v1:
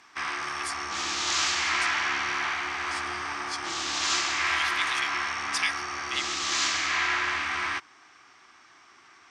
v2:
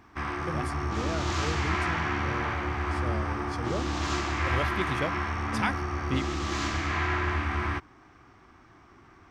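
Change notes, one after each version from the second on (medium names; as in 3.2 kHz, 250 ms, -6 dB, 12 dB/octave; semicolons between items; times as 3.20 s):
speech: remove brick-wall FIR high-pass 1.6 kHz; master: remove frequency weighting ITU-R 468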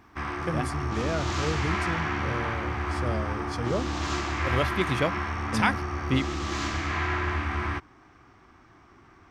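speech +5.0 dB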